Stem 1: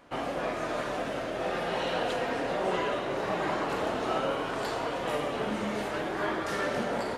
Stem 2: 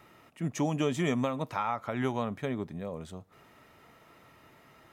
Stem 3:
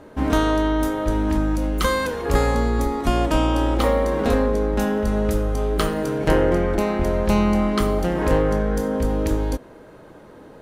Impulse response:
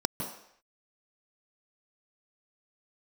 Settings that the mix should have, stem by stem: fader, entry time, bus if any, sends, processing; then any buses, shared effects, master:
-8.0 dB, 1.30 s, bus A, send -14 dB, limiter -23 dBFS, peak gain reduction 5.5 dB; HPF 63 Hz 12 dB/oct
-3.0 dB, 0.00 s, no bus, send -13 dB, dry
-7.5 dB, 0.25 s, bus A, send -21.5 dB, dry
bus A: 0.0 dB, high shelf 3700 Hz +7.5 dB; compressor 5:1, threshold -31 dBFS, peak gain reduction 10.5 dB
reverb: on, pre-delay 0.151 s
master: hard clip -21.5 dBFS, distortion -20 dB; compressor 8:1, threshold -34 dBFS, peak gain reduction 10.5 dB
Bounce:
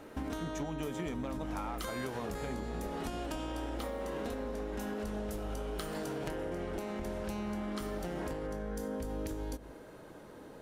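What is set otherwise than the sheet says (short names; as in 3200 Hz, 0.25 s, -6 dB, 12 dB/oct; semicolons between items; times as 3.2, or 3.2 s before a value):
stem 3: entry 0.25 s -> 0.00 s; reverb return -9.5 dB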